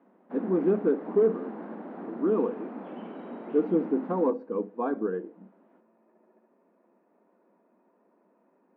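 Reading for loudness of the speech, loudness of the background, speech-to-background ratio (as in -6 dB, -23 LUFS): -28.0 LUFS, -40.5 LUFS, 12.5 dB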